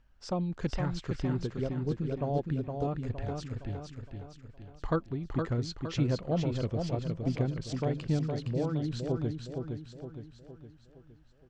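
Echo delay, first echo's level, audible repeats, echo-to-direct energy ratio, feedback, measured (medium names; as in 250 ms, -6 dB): 464 ms, -5.0 dB, 5, -4.0 dB, 48%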